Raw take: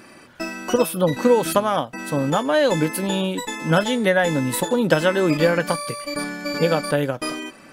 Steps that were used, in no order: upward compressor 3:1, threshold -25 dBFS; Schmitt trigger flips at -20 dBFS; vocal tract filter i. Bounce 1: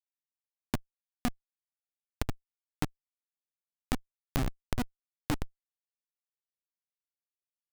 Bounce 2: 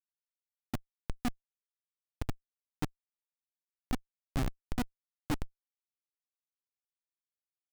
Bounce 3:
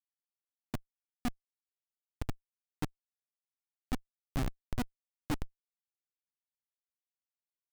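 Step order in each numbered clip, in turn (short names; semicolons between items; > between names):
vocal tract filter > Schmitt trigger > upward compressor; vocal tract filter > upward compressor > Schmitt trigger; upward compressor > vocal tract filter > Schmitt trigger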